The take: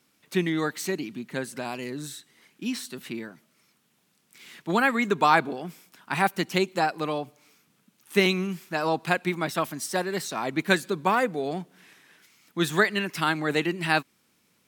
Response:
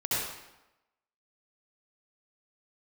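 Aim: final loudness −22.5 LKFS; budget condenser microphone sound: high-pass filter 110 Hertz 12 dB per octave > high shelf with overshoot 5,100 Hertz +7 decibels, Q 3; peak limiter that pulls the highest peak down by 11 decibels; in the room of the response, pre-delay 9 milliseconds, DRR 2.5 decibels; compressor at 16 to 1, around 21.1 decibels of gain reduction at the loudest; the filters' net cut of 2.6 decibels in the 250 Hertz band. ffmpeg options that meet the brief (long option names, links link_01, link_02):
-filter_complex "[0:a]equalizer=frequency=250:width_type=o:gain=-3.5,acompressor=threshold=-37dB:ratio=16,alimiter=level_in=8dB:limit=-24dB:level=0:latency=1,volume=-8dB,asplit=2[link_01][link_02];[1:a]atrim=start_sample=2205,adelay=9[link_03];[link_02][link_03]afir=irnorm=-1:irlink=0,volume=-11.5dB[link_04];[link_01][link_04]amix=inputs=2:normalize=0,highpass=110,highshelf=frequency=5100:width_type=q:width=3:gain=7,volume=17.5dB"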